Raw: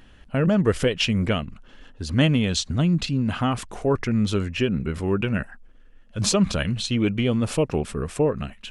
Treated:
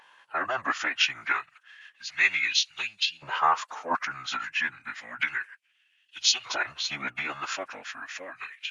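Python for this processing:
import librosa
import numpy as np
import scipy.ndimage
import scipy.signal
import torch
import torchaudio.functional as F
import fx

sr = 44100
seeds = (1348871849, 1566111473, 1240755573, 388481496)

y = fx.filter_lfo_highpass(x, sr, shape='saw_up', hz=0.31, low_hz=920.0, high_hz=3300.0, q=3.5)
y = fx.pitch_keep_formants(y, sr, semitones=-8.5)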